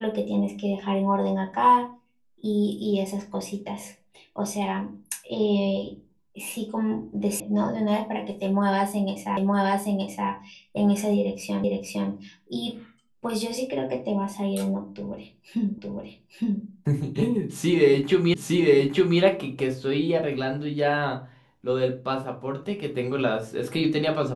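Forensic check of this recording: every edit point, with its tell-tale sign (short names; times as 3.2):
7.4 sound cut off
9.37 repeat of the last 0.92 s
11.64 repeat of the last 0.46 s
15.78 repeat of the last 0.86 s
18.34 repeat of the last 0.86 s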